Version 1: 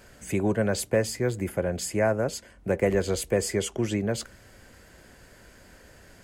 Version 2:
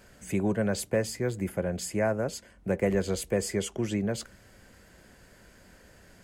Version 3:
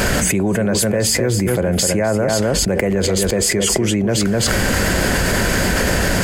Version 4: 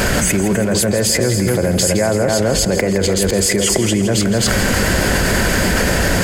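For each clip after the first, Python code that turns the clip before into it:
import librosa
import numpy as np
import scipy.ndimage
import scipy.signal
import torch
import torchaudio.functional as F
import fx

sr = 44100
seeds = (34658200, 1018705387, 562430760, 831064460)

y1 = fx.peak_eq(x, sr, hz=190.0, db=5.0, octaves=0.32)
y1 = y1 * librosa.db_to_amplitude(-3.5)
y2 = y1 + 10.0 ** (-9.5 / 20.0) * np.pad(y1, (int(254 * sr / 1000.0), 0))[:len(y1)]
y2 = fx.env_flatten(y2, sr, amount_pct=100)
y2 = y2 * librosa.db_to_amplitude(5.0)
y3 = fx.echo_feedback(y2, sr, ms=165, feedback_pct=58, wet_db=-11.0)
y3 = y3 * librosa.db_to_amplitude(1.0)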